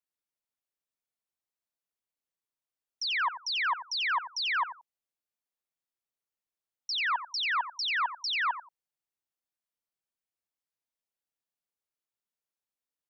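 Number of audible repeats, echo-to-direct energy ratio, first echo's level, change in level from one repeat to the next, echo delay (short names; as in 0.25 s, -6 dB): 2, -12.5 dB, -12.5 dB, -15.0 dB, 89 ms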